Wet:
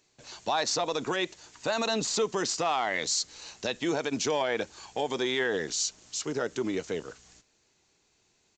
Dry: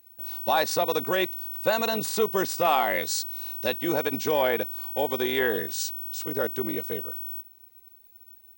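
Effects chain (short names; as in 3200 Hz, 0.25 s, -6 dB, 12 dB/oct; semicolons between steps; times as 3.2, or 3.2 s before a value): high shelf 6200 Hz +11 dB; notch 540 Hz, Q 12; limiter -16.5 dBFS, peak gain reduction 8 dB; downsampling 16000 Hz; gain +1 dB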